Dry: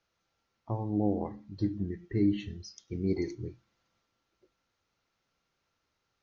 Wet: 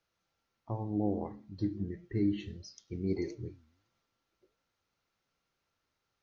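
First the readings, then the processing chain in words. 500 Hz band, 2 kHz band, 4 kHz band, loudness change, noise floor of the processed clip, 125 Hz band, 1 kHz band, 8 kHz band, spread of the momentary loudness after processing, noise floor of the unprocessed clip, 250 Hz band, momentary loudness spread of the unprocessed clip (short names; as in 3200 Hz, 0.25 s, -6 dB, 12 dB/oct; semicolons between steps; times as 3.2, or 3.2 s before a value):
-3.0 dB, -3.0 dB, -3.0 dB, -3.0 dB, -84 dBFS, -3.0 dB, -3.0 dB, n/a, 13 LU, -81 dBFS, -3.0 dB, 14 LU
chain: flange 1.5 Hz, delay 6.1 ms, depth 7.1 ms, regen +90%; gain +1.5 dB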